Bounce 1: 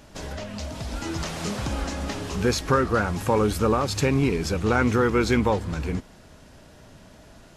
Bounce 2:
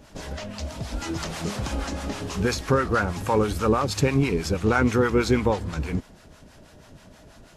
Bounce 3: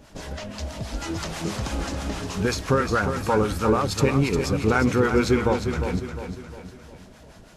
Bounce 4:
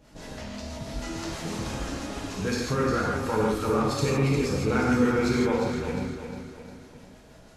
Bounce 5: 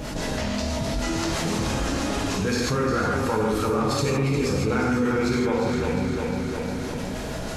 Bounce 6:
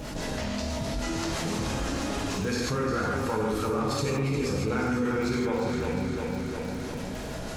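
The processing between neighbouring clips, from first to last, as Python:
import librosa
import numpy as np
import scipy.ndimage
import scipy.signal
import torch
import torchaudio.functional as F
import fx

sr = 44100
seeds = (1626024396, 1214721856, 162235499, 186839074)

y1 = fx.harmonic_tremolo(x, sr, hz=6.2, depth_pct=70, crossover_hz=690.0)
y1 = y1 * 10.0 ** (3.0 / 20.0)
y2 = fx.echo_feedback(y1, sr, ms=354, feedback_pct=46, wet_db=-8)
y3 = fx.rev_gated(y2, sr, seeds[0], gate_ms=190, shape='flat', drr_db=-3.5)
y3 = y3 * 10.0 ** (-8.5 / 20.0)
y4 = fx.env_flatten(y3, sr, amount_pct=70)
y4 = y4 * 10.0 ** (-2.5 / 20.0)
y5 = fx.dmg_crackle(y4, sr, seeds[1], per_s=36.0, level_db=-31.0)
y5 = y5 * 10.0 ** (-4.5 / 20.0)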